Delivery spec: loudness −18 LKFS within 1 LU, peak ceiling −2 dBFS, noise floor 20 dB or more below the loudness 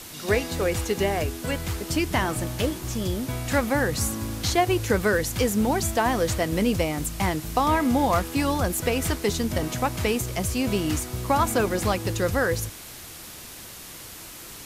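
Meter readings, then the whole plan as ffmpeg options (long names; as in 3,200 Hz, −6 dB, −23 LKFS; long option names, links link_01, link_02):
background noise floor −41 dBFS; target noise floor −45 dBFS; integrated loudness −25.0 LKFS; sample peak −8.0 dBFS; target loudness −18.0 LKFS
→ -af "afftdn=noise_reduction=6:noise_floor=-41"
-af "volume=7dB,alimiter=limit=-2dB:level=0:latency=1"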